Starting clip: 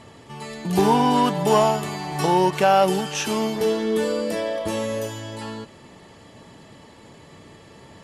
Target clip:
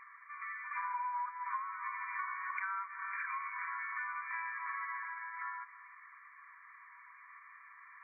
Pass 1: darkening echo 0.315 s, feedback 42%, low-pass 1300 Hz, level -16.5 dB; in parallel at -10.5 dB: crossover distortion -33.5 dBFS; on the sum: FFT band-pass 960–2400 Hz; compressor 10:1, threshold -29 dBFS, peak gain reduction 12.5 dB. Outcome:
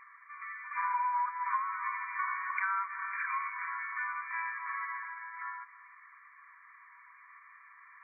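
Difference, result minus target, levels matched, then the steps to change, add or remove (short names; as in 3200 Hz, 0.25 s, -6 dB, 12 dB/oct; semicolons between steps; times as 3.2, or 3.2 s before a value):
compressor: peak gain reduction -6.5 dB
change: compressor 10:1, threshold -36 dBFS, peak gain reduction 19 dB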